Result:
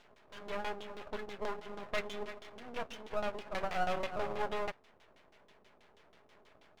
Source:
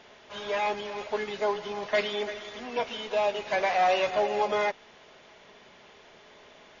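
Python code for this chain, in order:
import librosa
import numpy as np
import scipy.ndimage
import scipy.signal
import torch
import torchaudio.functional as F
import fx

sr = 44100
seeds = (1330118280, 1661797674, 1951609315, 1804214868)

y = fx.filter_lfo_lowpass(x, sr, shape='saw_down', hz=6.2, low_hz=370.0, high_hz=4800.0, q=1.3)
y = np.maximum(y, 0.0)
y = F.gain(torch.from_numpy(y), -6.5).numpy()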